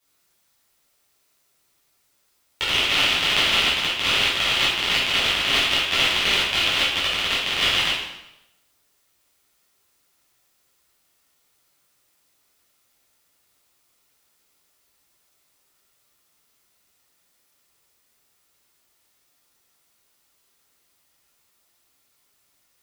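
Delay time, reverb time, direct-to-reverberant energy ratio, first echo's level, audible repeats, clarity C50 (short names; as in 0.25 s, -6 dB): none, 0.90 s, -10.0 dB, none, none, 0.5 dB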